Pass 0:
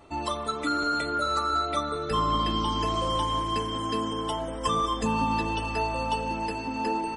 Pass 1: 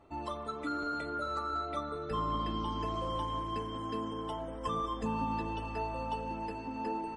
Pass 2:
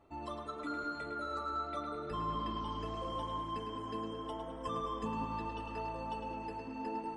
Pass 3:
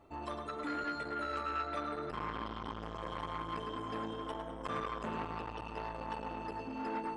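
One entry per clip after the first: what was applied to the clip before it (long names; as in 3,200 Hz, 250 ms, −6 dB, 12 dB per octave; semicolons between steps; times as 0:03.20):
high-shelf EQ 2,900 Hz −12 dB; level −7 dB
tape delay 106 ms, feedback 63%, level −5.5 dB, low-pass 5,400 Hz; level −4.5 dB
saturating transformer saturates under 1,100 Hz; level +3.5 dB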